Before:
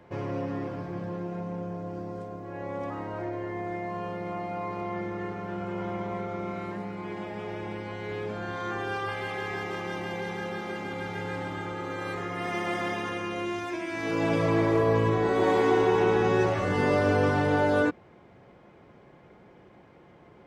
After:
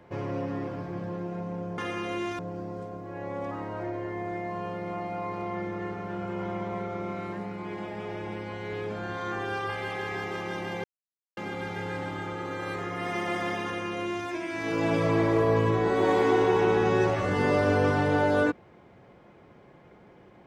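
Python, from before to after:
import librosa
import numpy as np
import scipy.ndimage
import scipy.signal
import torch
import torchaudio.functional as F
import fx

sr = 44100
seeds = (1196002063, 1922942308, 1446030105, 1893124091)

y = fx.edit(x, sr, fx.silence(start_s=10.23, length_s=0.53),
    fx.duplicate(start_s=13.05, length_s=0.61, to_s=1.78), tone=tone)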